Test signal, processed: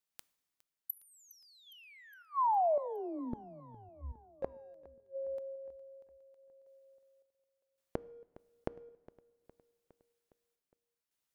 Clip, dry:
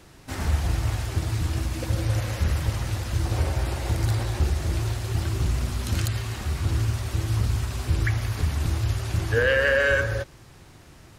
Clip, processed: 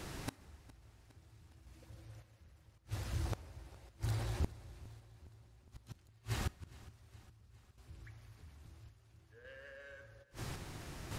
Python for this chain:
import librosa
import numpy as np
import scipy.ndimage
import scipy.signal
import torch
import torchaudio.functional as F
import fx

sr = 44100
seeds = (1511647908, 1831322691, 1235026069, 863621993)

p1 = np.clip(x, -10.0 ** (-23.5 / 20.0), 10.0 ** (-23.5 / 20.0))
p2 = x + (p1 * librosa.db_to_amplitude(-8.0))
p3 = fx.tremolo_random(p2, sr, seeds[0], hz=1.8, depth_pct=90)
p4 = fx.gate_flip(p3, sr, shuts_db=-30.0, range_db=-37)
p5 = fx.echo_feedback(p4, sr, ms=411, feedback_pct=59, wet_db=-20.0)
p6 = fx.rev_double_slope(p5, sr, seeds[1], early_s=0.81, late_s=3.5, knee_db=-19, drr_db=19.5)
y = p6 * librosa.db_to_amplitude(5.0)